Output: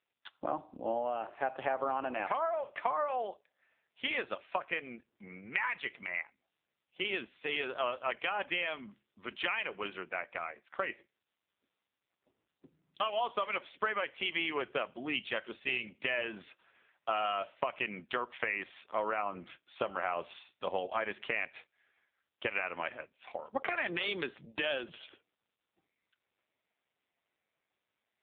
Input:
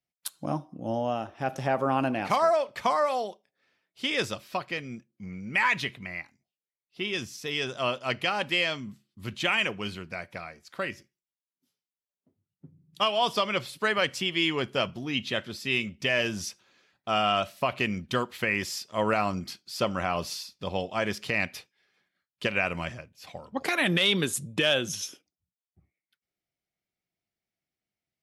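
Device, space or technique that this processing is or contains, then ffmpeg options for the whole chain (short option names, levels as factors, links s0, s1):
voicemail: -af "highpass=450,lowpass=2700,acompressor=threshold=0.0251:ratio=10,volume=1.58" -ar 8000 -c:a libopencore_amrnb -b:a 5900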